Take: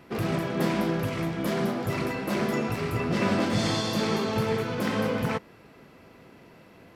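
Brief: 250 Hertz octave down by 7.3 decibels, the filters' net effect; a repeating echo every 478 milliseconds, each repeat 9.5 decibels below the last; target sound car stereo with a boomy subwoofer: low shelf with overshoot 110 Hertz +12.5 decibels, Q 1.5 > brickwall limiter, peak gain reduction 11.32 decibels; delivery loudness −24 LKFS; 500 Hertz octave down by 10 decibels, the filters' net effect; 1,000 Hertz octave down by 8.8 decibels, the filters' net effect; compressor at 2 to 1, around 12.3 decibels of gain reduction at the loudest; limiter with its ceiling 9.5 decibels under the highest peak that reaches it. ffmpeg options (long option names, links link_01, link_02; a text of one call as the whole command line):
ffmpeg -i in.wav -af "equalizer=frequency=250:width_type=o:gain=-4.5,equalizer=frequency=500:width_type=o:gain=-8.5,equalizer=frequency=1000:width_type=o:gain=-8.5,acompressor=threshold=-49dB:ratio=2,alimiter=level_in=15.5dB:limit=-24dB:level=0:latency=1,volume=-15.5dB,lowshelf=frequency=110:width_type=q:width=1.5:gain=12.5,aecho=1:1:478|956|1434|1912:0.335|0.111|0.0365|0.012,volume=26.5dB,alimiter=limit=-14.5dB:level=0:latency=1" out.wav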